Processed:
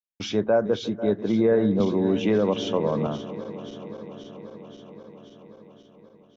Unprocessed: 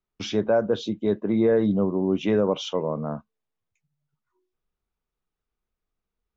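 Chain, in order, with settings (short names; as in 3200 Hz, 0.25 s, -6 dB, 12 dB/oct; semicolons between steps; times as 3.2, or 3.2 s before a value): regenerating reverse delay 0.265 s, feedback 83%, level -14 dB; expander -48 dBFS; 1.8–3.07 three-band squash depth 70%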